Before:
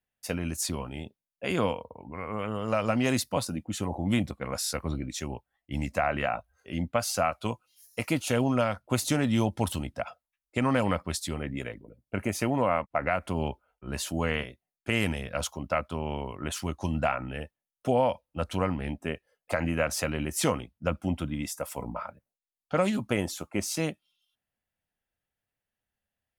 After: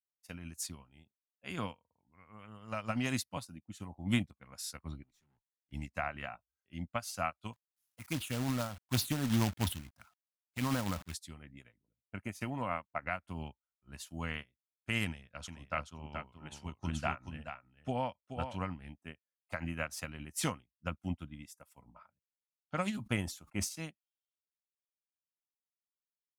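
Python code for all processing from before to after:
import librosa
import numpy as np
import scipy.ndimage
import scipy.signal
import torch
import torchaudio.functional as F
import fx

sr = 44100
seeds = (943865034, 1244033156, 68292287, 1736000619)

y = fx.chain(x, sr, fx.highpass(hz=79.0, slope=24),
    fx.tube_stage(drive_db=41.0, bias=0.75), at=(5.03, 5.72))
y = fx.chain(y, sr, fx.env_phaser(low_hz=230.0, high_hz=2600.0, full_db=-21.0),
    fx.quant_companded(bits=4),
    fx.sustainer(db_per_s=72.0), at=(7.53, 11.14))
y = fx.chain(y, sr, fx.lowpass(hz=7900.0, slope=12),
    fx.echo_single(ms=428, db=-3.5), at=(15.05, 18.76))
y = fx.chain(y, sr, fx.low_shelf(hz=91.0, db=8.0),
    fx.sustainer(db_per_s=66.0), at=(22.97, 23.69))
y = fx.peak_eq(y, sr, hz=470.0, db=-10.0, octaves=1.2)
y = fx.upward_expand(y, sr, threshold_db=-44.0, expansion=2.5)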